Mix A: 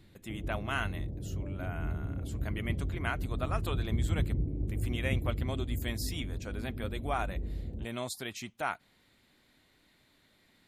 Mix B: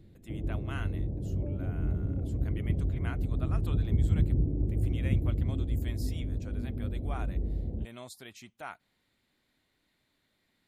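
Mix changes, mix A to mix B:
speech -8.5 dB; background +4.5 dB

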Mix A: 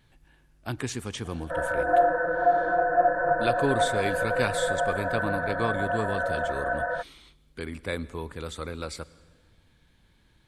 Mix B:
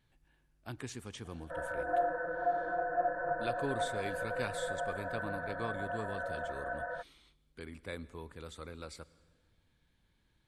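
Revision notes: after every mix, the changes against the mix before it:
speech -11.0 dB; background -10.5 dB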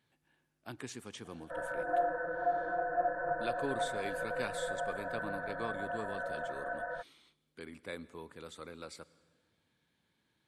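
speech: add HPF 160 Hz 12 dB/oct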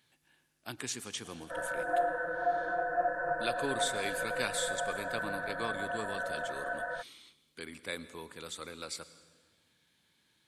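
speech: send +6.0 dB; master: add high shelf 2100 Hz +11.5 dB

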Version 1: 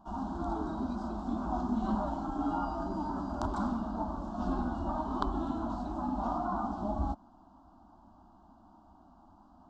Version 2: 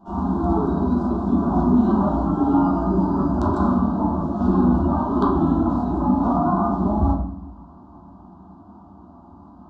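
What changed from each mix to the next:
reverb: on, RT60 0.60 s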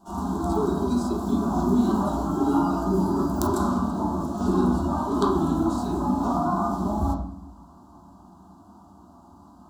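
background -6.5 dB; master: remove tape spacing loss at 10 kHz 35 dB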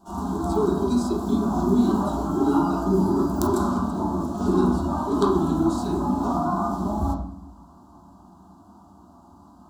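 speech +3.5 dB

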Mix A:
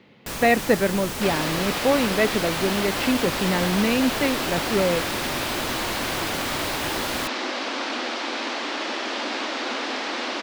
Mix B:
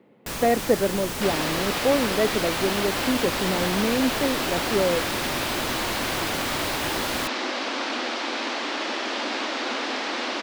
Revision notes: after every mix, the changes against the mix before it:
speech: add band-pass 430 Hz, Q 0.73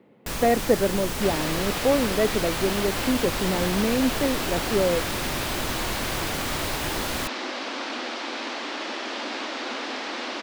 second sound -3.5 dB; master: add low shelf 63 Hz +9.5 dB

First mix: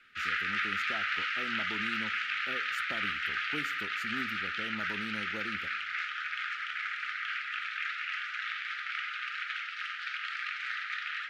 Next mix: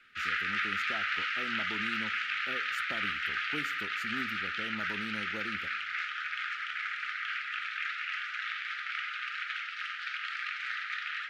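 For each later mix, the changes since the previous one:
none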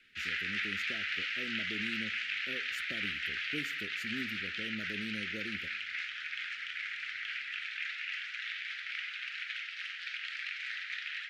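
master: add Butterworth band-stop 980 Hz, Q 0.71

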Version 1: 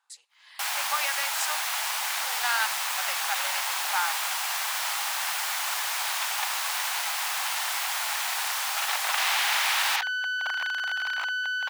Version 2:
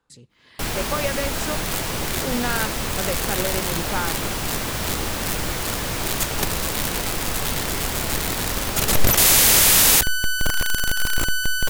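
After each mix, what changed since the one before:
speech: add high shelf 5800 Hz -6 dB; second sound: remove air absorption 270 m; master: remove Chebyshev high-pass 790 Hz, order 4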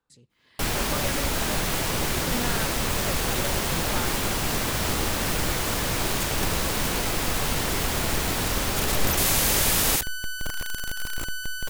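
speech -8.5 dB; second sound -9.5 dB

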